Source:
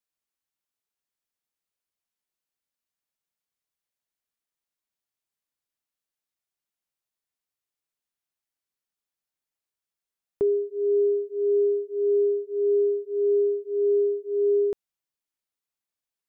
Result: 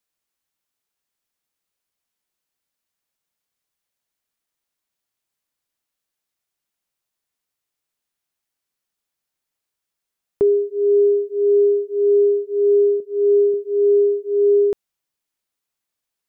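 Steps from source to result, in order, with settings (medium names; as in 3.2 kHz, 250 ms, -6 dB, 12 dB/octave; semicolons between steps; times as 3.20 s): 13.00–13.54 s: three bands expanded up and down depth 40%; trim +7 dB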